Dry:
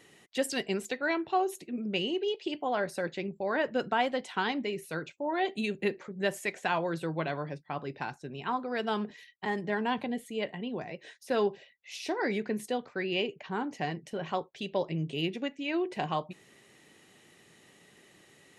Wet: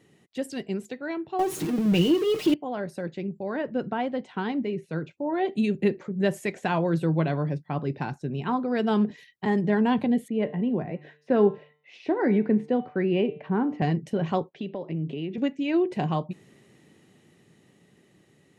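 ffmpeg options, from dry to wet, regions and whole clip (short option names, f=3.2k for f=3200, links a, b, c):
-filter_complex "[0:a]asettb=1/sr,asplit=3[a][b][c];[a]atrim=end=1.394[d];[b]atrim=start=1.39:end=2.54,asetpts=PTS-STARTPTS,afade=t=in:d=0.004:c=qsin,afade=t=out:st=1.146:d=0.004:c=qsin,aeval=exprs='val(0)+0.5*0.0211*sgn(val(0))':c=same,aecho=1:1:6.4:0.55,atrim=end_sample=50715,acontrast=76[e];[c]atrim=start=2.536[f];[d][e]acrossfade=d=0.004:c1=hsin:c2=qsin[g];[g][f]acrossfade=d=0.004:c1=qsin:c2=hsin,asettb=1/sr,asplit=3[h][i][j];[h]atrim=end=3.614[k];[i]atrim=start=3.61:end=5.53,asetpts=PTS-STARTPTS,afade=t=in:d=0.004:c=qsin,afade=t=out:st=1.916:d=0.004:c=qsin,lowpass=9.2k,aemphasis=mode=reproduction:type=50fm[l];[j]atrim=start=5.526[m];[k][l]acrossfade=d=0.004:c1=hsin:c2=qsin[n];[n][m]acrossfade=d=0.004:c1=qsin:c2=hsin,asettb=1/sr,asplit=3[o][p][q];[o]atrim=end=10.284[r];[p]atrim=start=10.28:end=13.82,asetpts=PTS-STARTPTS,afade=t=in:d=0.004:c=qsin,afade=t=out:st=3.536:d=0.004:c=qsin,highpass=100,lowpass=2.1k,bandreject=f=149.3:t=h:w=4,bandreject=f=298.6:t=h:w=4,bandreject=f=447.9:t=h:w=4,bandreject=f=597.2:t=h:w=4,bandreject=f=746.5:t=h:w=4,bandreject=f=895.8:t=h:w=4,bandreject=f=1.0451k:t=h:w=4,bandreject=f=1.1944k:t=h:w=4,bandreject=f=1.3437k:t=h:w=4,bandreject=f=1.493k:t=h:w=4,bandreject=f=1.6423k:t=h:w=4,bandreject=f=1.7916k:t=h:w=4,bandreject=f=1.9409k:t=h:w=4,bandreject=f=2.0902k:t=h:w=4,bandreject=f=2.2395k:t=h:w=4,bandreject=f=2.3888k:t=h:w=4,bandreject=f=2.5381k:t=h:w=4,bandreject=f=2.6874k:t=h:w=4,bandreject=f=2.8367k:t=h:w=4,bandreject=f=2.986k:t=h:w=4,bandreject=f=3.1353k:t=h:w=4,bandreject=f=3.2846k:t=h:w=4,bandreject=f=3.4339k:t=h:w=4,bandreject=f=3.5832k:t=h:w=4,bandreject=f=3.7325k:t=h:w=4,bandreject=f=3.8818k:t=h:w=4,bandreject=f=4.0311k:t=h:w=4,bandreject=f=4.1804k:t=h:w=4[s];[q]atrim=start=13.816[t];[r][s]acrossfade=d=0.004:c1=hsin:c2=qsin[u];[u][t]acrossfade=d=0.004:c1=qsin:c2=hsin,asettb=1/sr,asplit=3[v][w][x];[v]atrim=end=14.494[y];[w]atrim=start=14.49:end=15.38,asetpts=PTS-STARTPTS,afade=t=in:d=0.004:c=qsin,afade=t=out:st=0.886:d=0.004:c=qsin,highpass=190,lowpass=3k,acompressor=threshold=-39dB:ratio=3:attack=3.2:release=140:knee=1:detection=peak[z];[x]atrim=start=15.376[aa];[y][z]acrossfade=d=0.004:c1=hsin:c2=qsin[ab];[ab][aa]acrossfade=d=0.004:c1=qsin:c2=hsin,equalizer=f=140:w=0.34:g=13.5,dynaudnorm=f=330:g=17:m=11.5dB,volume=-8dB"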